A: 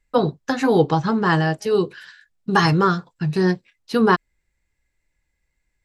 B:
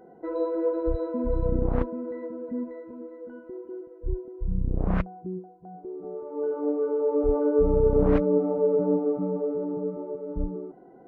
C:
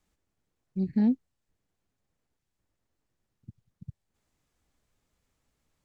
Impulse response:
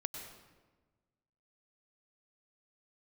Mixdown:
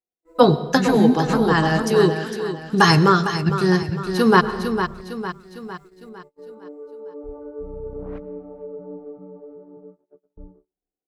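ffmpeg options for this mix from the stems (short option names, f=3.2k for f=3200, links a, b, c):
-filter_complex "[0:a]highshelf=f=6.4k:g=10,adelay=250,volume=3dB,asplit=3[a][b][c];[b]volume=-7dB[d];[c]volume=-8dB[e];[1:a]bandreject=f=50:t=h:w=6,bandreject=f=100:t=h:w=6,bandreject=f=150:t=h:w=6,bandreject=f=200:t=h:w=6,bandreject=f=250:t=h:w=6,bandreject=f=300:t=h:w=6,volume=-17.5dB,asplit=3[f][g][h];[g]volume=-10dB[i];[h]volume=-22.5dB[j];[2:a]dynaudnorm=f=260:g=9:m=16dB,volume=0dB,asplit=2[k][l];[l]apad=whole_len=268595[m];[a][m]sidechaincompress=threshold=-31dB:ratio=8:attack=37:release=760[n];[3:a]atrim=start_sample=2205[o];[d][i]amix=inputs=2:normalize=0[p];[p][o]afir=irnorm=-1:irlink=0[q];[e][j]amix=inputs=2:normalize=0,aecho=0:1:455|910|1365|1820|2275|2730:1|0.41|0.168|0.0689|0.0283|0.0116[r];[n][f][k][q][r]amix=inputs=5:normalize=0,agate=range=-34dB:threshold=-46dB:ratio=16:detection=peak,dynaudnorm=f=220:g=9:m=3dB"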